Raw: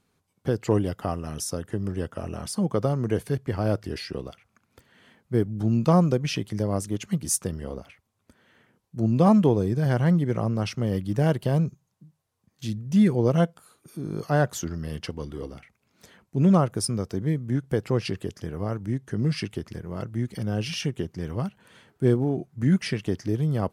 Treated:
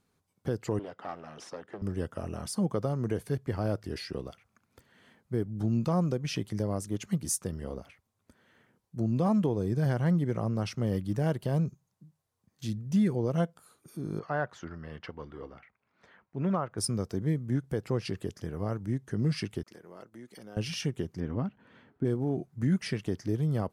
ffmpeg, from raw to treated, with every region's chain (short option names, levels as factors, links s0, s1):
-filter_complex "[0:a]asettb=1/sr,asplit=3[s0][s1][s2];[s0]atrim=end=0.794[s3];[s1]atrim=start=0.79:end=1.82,asetpts=PTS-STARTPTS,afade=t=in:d=0.004:c=qsin,afade=t=out:st=1.026:d=0.004:c=qsin,aeval=exprs='clip(val(0),-1,0.0251)':c=same,highpass=280,lowpass=3400[s4];[s2]atrim=start=1.816[s5];[s3][s4]acrossfade=d=0.004:c1=hsin:c2=qsin[s6];[s6][s5]acrossfade=d=0.004:c1=qsin:c2=hsin,asettb=1/sr,asplit=3[s7][s8][s9];[s7]atrim=end=14.194[s10];[s8]atrim=start=14.19:end=16.78,asetpts=PTS-STARTPTS,afade=t=in:d=0.004:c=qsin,afade=t=out:st=2.586:d=0.004:c=qsin,lowpass=1600,tiltshelf=f=750:g=-8.5[s11];[s9]atrim=start=16.776[s12];[s10][s11]acrossfade=d=0.004:c1=hsin:c2=qsin[s13];[s13][s12]acrossfade=d=0.004:c1=qsin:c2=hsin,asettb=1/sr,asplit=3[s14][s15][s16];[s14]atrim=end=19.634[s17];[s15]atrim=start=19.63:end=20.57,asetpts=PTS-STARTPTS,afade=t=in:d=0.004:c=qsin,afade=t=out:st=0.936:d=0.004:c=qsin,highpass=330,acompressor=threshold=0.00562:ratio=2:attack=3.2:release=140:knee=1:detection=peak,agate=range=0.0224:threshold=0.00282:ratio=3:release=100:detection=peak[s18];[s16]atrim=start=20.566[s19];[s17][s18]acrossfade=d=0.004:c1=hsin:c2=qsin[s20];[s20][s19]acrossfade=d=0.004:c1=qsin:c2=hsin,asettb=1/sr,asplit=3[s21][s22][s23];[s21]atrim=end=21.204[s24];[s22]atrim=start=21.2:end=22.05,asetpts=PTS-STARTPTS,afade=t=in:d=0.004:c=qsin,afade=t=out:st=0.846:d=0.004:c=qsin,lowpass=2700,equalizer=f=260:t=o:w=0.4:g=9[s25];[s23]atrim=start=22.046[s26];[s24][s25]acrossfade=d=0.004:c1=hsin:c2=qsin[s27];[s27][s26]acrossfade=d=0.004:c1=qsin:c2=hsin,equalizer=f=2800:t=o:w=0.77:g=-2.5,alimiter=limit=0.178:level=0:latency=1:release=248,volume=0.668"